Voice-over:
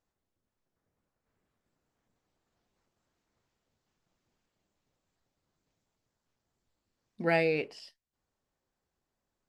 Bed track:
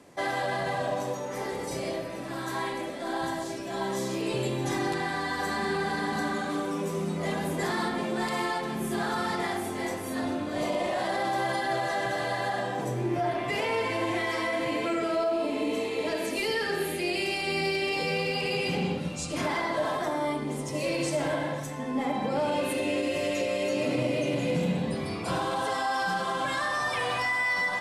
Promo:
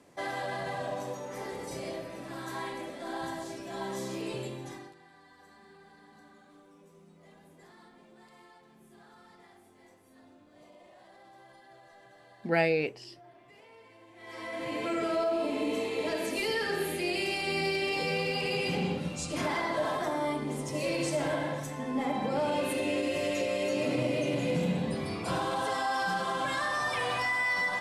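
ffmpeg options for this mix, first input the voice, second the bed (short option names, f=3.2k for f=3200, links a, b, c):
-filter_complex "[0:a]adelay=5250,volume=1dB[a];[1:a]volume=19.5dB,afade=t=out:st=4.22:d=0.72:silence=0.0841395,afade=t=in:st=14.16:d=0.87:silence=0.0562341[b];[a][b]amix=inputs=2:normalize=0"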